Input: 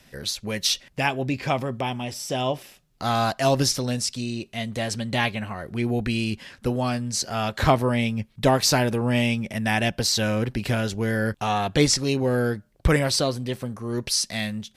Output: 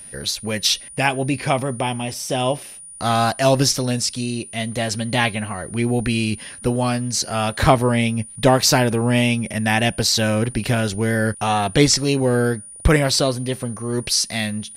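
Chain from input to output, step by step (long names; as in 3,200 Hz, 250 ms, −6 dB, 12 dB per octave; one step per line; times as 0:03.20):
tape wow and flutter 29 cents
steady tone 9,500 Hz −41 dBFS
level +4.5 dB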